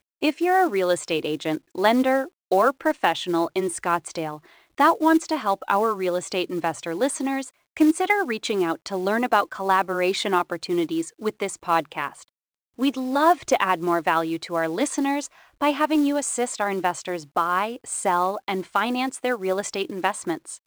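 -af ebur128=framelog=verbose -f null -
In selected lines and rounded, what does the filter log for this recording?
Integrated loudness:
  I:         -23.5 LUFS
  Threshold: -33.7 LUFS
Loudness range:
  LRA:         2.4 LU
  Threshold: -43.7 LUFS
  LRA low:   -25.0 LUFS
  LRA high:  -22.6 LUFS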